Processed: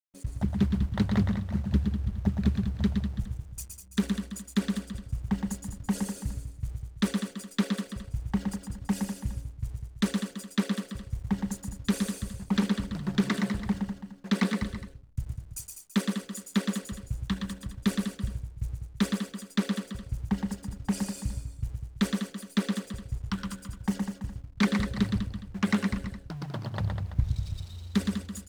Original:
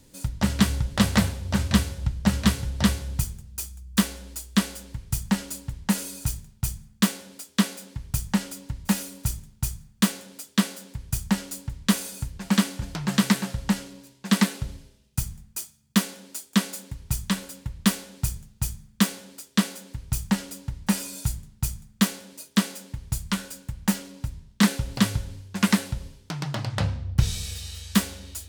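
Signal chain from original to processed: formant sharpening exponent 2; in parallel at -11 dB: bit-crush 6-bit; on the sum: backlash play -41.5 dBFS; tapped delay 0.117/0.127/0.199/0.333/0.415 s -5/-19.5/-8.5/-14/-19.5 dB; Doppler distortion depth 0.49 ms; gain -7.5 dB

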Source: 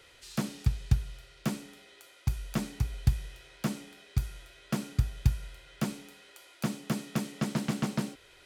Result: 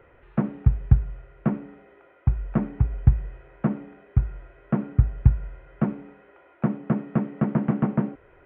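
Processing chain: Gaussian blur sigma 5.5 samples; gain +8.5 dB

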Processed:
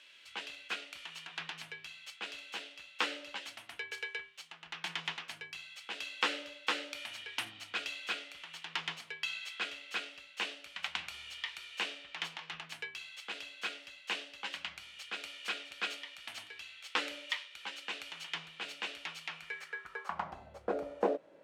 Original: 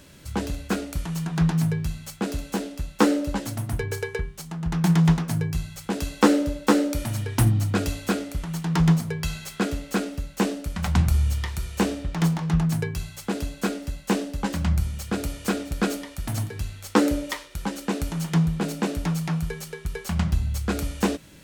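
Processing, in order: band-pass sweep 2900 Hz -> 570 Hz, 19.31–20.6; tone controls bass -12 dB, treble -4 dB; gain +3 dB

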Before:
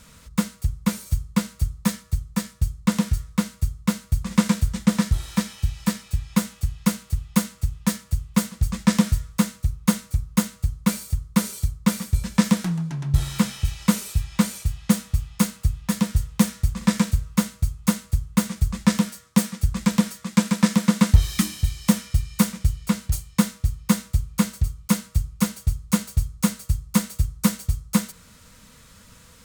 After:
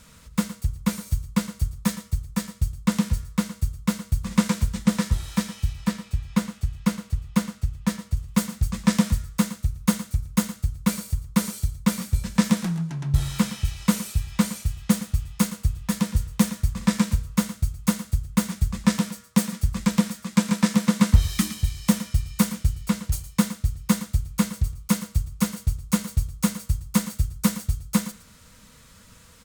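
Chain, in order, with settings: 5.73–8.17 high shelf 6300 Hz -9.5 dB; echo 0.115 s -14 dB; gain -1.5 dB

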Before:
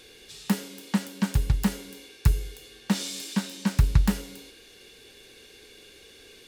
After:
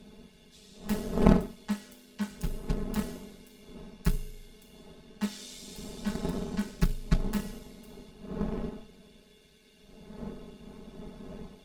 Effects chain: wind noise 290 Hz -28 dBFS; added harmonics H 3 -12 dB, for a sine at -4 dBFS; granular stretch 1.8×, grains 21 ms; gain +1.5 dB

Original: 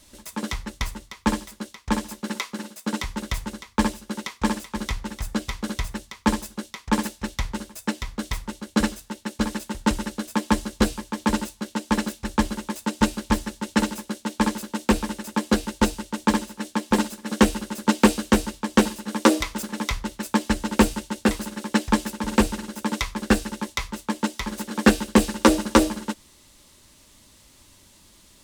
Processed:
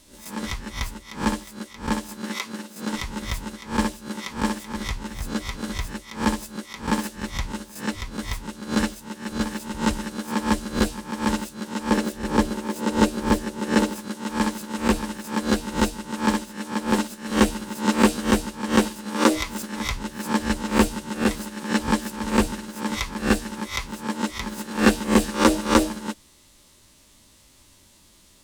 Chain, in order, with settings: spectral swells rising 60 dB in 0.33 s; 11.9–13.96 bell 430 Hz +7.5 dB 1.4 oct; gain -2.5 dB

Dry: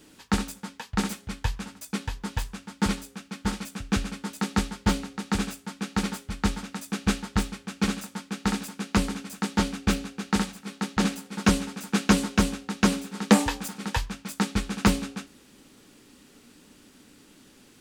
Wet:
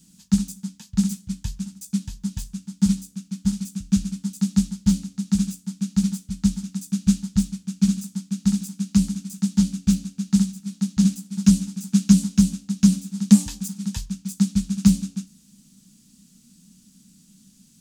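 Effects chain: EQ curve 120 Hz 0 dB, 190 Hz +13 dB, 360 Hz -20 dB, 2000 Hz -14 dB, 6600 Hz +7 dB, 12000 Hz +3 dB; gain -2 dB

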